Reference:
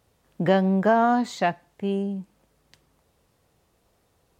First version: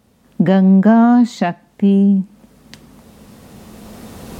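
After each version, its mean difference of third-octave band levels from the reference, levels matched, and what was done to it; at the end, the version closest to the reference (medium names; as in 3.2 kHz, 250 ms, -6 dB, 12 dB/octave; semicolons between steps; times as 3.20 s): 4.5 dB: recorder AGC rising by 8.8 dB/s; peaking EQ 220 Hz +15 dB 0.57 oct; in parallel at -0.5 dB: compression, threshold -29 dBFS, peak gain reduction 19 dB; on the sum: trim +1 dB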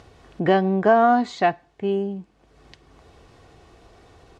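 2.0 dB: comb 2.7 ms, depth 38%; upward compressor, threshold -40 dBFS; distance through air 98 m; trim +3 dB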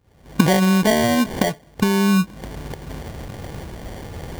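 14.5 dB: recorder AGC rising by 61 dB/s; bass shelf 350 Hz +7.5 dB; sample-rate reducer 1.3 kHz, jitter 0%; trim -1 dB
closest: second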